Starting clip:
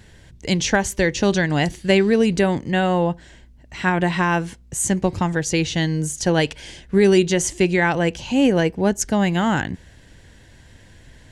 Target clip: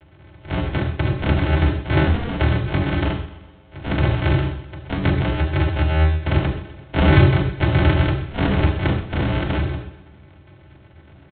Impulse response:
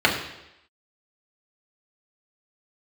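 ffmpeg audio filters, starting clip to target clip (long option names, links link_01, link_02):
-filter_complex "[0:a]aresample=8000,acrusher=samples=34:mix=1:aa=0.000001,aresample=44100,aecho=1:1:127|254|381|508|635:0.178|0.0871|0.0427|0.0209|0.0103[link_01];[1:a]atrim=start_sample=2205,atrim=end_sample=6615[link_02];[link_01][link_02]afir=irnorm=-1:irlink=0,volume=-15.5dB"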